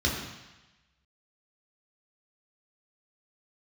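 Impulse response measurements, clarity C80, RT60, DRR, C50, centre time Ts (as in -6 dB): 5.0 dB, 1.0 s, -3.5 dB, 3.5 dB, 52 ms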